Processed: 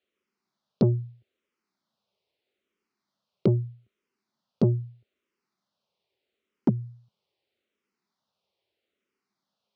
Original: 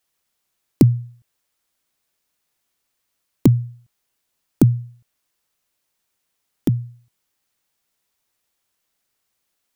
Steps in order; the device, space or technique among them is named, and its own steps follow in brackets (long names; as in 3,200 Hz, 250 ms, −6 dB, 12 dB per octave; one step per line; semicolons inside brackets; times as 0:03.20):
barber-pole phaser into a guitar amplifier (frequency shifter mixed with the dry sound −0.79 Hz; soft clipping −17.5 dBFS, distortion −9 dB; loudspeaker in its box 93–4,600 Hz, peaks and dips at 210 Hz +9 dB, 390 Hz +10 dB, 560 Hz +5 dB, 1,700 Hz −6 dB)
level −1 dB